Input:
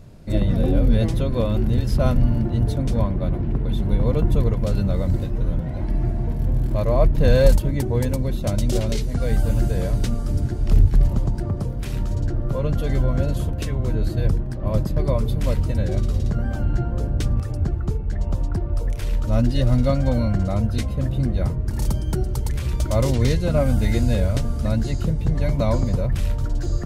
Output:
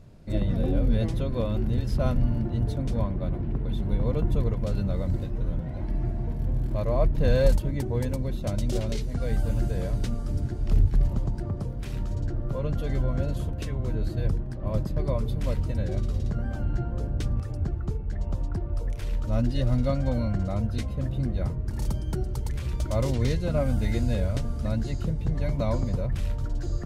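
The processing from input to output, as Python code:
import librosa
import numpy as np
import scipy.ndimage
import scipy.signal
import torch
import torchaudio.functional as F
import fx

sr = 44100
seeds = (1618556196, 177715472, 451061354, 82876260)

y = fx.high_shelf(x, sr, hz=8300.0, db=-5.5)
y = y * librosa.db_to_amplitude(-6.0)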